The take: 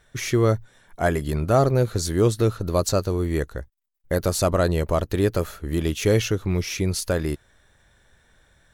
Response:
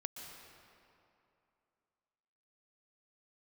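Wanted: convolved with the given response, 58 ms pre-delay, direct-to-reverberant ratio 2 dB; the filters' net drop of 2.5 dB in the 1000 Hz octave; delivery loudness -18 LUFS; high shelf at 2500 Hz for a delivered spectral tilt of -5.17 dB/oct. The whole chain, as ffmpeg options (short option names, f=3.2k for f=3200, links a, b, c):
-filter_complex "[0:a]equalizer=f=1k:t=o:g=-4.5,highshelf=f=2.5k:g=3.5,asplit=2[a][b];[1:a]atrim=start_sample=2205,adelay=58[c];[b][c]afir=irnorm=-1:irlink=0,volume=-0.5dB[d];[a][d]amix=inputs=2:normalize=0,volume=3.5dB"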